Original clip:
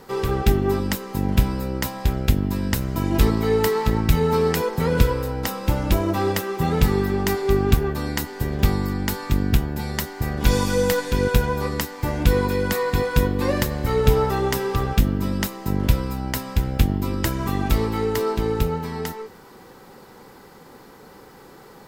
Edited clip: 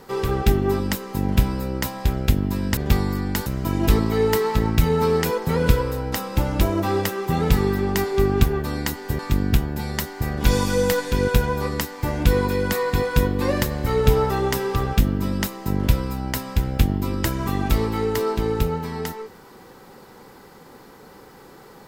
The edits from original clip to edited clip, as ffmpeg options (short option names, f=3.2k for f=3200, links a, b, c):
-filter_complex "[0:a]asplit=4[a][b][c][d];[a]atrim=end=2.772[e];[b]atrim=start=8.498:end=9.192[f];[c]atrim=start=2.768:end=8.502[g];[d]atrim=start=9.188[h];[e][f]acrossfade=d=0.004:c1=hsin:c2=hsin[i];[i][g]acrossfade=d=0.004:c1=hsin:c2=hsin[j];[j][h]acrossfade=d=0.004:c1=hsin:c2=hsin"